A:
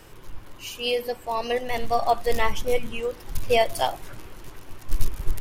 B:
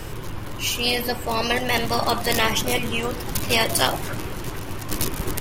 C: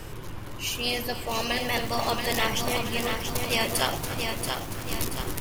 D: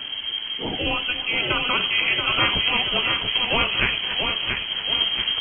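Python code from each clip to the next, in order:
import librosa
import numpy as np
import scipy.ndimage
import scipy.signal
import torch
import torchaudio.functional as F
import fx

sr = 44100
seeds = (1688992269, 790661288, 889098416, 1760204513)

y1 = fx.low_shelf(x, sr, hz=150.0, db=9.0)
y1 = fx.spectral_comp(y1, sr, ratio=4.0)
y1 = y1 * librosa.db_to_amplitude(-4.5)
y2 = y1 + 10.0 ** (-14.5 / 20.0) * np.pad(y1, (int(287 * sr / 1000.0), 0))[:len(y1)]
y2 = fx.echo_crushed(y2, sr, ms=681, feedback_pct=55, bits=6, wet_db=-4.5)
y2 = y2 * librosa.db_to_amplitude(-6.0)
y3 = fx.freq_invert(y2, sr, carrier_hz=3200)
y3 = y3 * librosa.db_to_amplitude(5.0)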